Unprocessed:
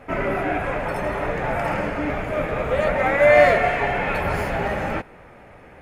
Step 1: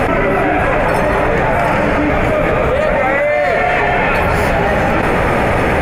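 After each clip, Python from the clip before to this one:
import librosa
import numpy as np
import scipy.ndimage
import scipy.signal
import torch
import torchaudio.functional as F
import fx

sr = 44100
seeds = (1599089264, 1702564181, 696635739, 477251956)

y = fx.env_flatten(x, sr, amount_pct=100)
y = y * librosa.db_to_amplitude(-3.0)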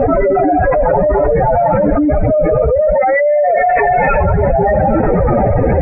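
y = fx.spec_expand(x, sr, power=3.0)
y = y * librosa.db_to_amplitude(2.5)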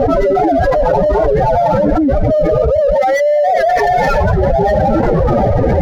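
y = scipy.signal.medfilt(x, 15)
y = fx.record_warp(y, sr, rpm=78.0, depth_cents=160.0)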